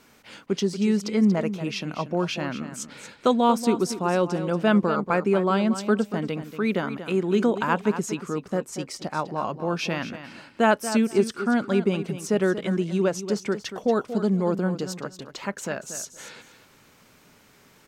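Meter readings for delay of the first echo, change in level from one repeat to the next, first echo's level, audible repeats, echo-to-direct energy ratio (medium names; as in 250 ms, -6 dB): 234 ms, -15.0 dB, -11.5 dB, 2, -11.5 dB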